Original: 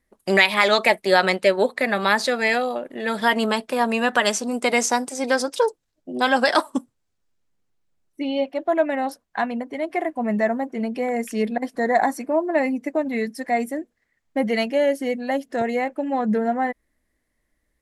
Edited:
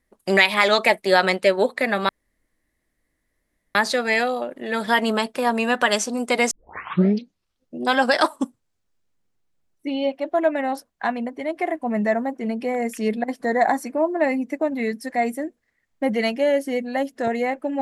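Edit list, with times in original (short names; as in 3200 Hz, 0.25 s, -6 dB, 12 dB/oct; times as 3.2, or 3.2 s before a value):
2.09 insert room tone 1.66 s
4.85 tape start 1.33 s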